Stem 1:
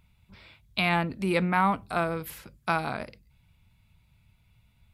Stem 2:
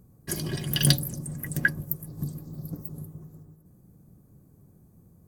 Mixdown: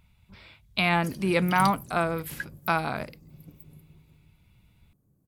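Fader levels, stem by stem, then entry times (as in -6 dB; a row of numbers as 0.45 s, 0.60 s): +1.5 dB, -12.5 dB; 0.00 s, 0.75 s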